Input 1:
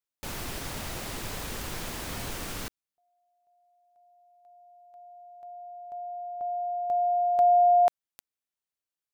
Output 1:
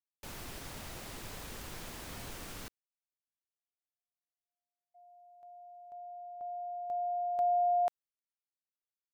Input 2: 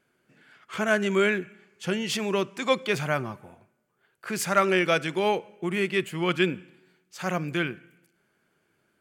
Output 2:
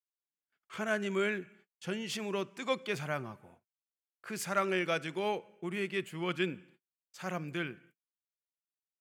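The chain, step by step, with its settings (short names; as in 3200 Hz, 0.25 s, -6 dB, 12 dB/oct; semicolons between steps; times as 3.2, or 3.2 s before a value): gate -51 dBFS, range -43 dB; gain -9 dB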